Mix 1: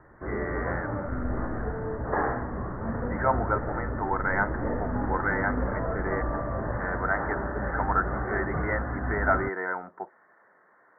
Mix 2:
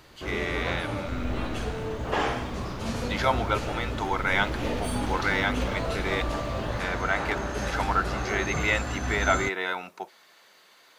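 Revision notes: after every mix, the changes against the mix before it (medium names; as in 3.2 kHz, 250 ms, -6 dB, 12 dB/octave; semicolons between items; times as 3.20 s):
master: remove steep low-pass 1.9 kHz 96 dB/octave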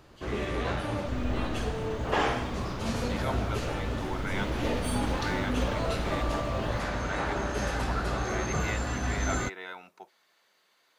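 speech -11.5 dB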